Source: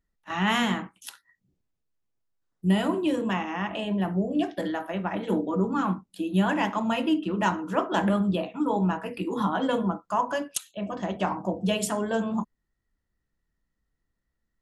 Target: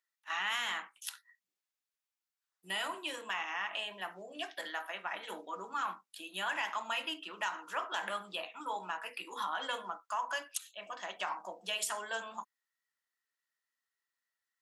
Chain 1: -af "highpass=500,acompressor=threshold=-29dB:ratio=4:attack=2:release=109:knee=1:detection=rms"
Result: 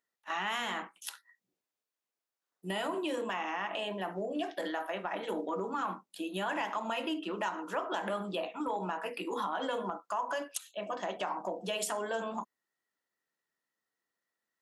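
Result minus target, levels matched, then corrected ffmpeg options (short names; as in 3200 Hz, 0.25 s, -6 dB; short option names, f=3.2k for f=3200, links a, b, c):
500 Hz band +7.5 dB
-af "highpass=1.3k,acompressor=threshold=-29dB:ratio=4:attack=2:release=109:knee=1:detection=rms"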